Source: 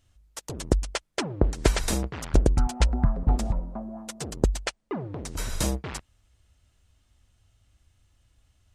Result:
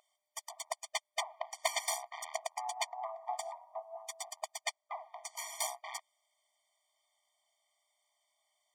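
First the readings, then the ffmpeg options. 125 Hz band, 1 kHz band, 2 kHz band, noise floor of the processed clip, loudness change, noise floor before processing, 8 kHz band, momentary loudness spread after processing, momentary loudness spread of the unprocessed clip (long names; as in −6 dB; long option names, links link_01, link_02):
below −40 dB, −2.0 dB, −5.5 dB, below −85 dBFS, −11.5 dB, −68 dBFS, −4.5 dB, 11 LU, 13 LU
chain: -af "highpass=frequency=84:width=0.5412,highpass=frequency=84:width=1.3066,aeval=exprs='0.562*(cos(1*acos(clip(val(0)/0.562,-1,1)))-cos(1*PI/2))+0.01*(cos(2*acos(clip(val(0)/0.562,-1,1)))-cos(2*PI/2))+0.0141*(cos(4*acos(clip(val(0)/0.562,-1,1)))-cos(4*PI/2))+0.0355*(cos(6*acos(clip(val(0)/0.562,-1,1)))-cos(6*PI/2))+0.0708*(cos(8*acos(clip(val(0)/0.562,-1,1)))-cos(8*PI/2))':channel_layout=same,equalizer=frequency=390:width_type=o:width=0.81:gain=2.5,aeval=exprs='val(0)+0.0112*sin(2*PI*430*n/s)':channel_layout=same,afftfilt=real='re*eq(mod(floor(b*sr/1024/610),2),1)':imag='im*eq(mod(floor(b*sr/1024/610),2),1)':win_size=1024:overlap=0.75,volume=-2dB"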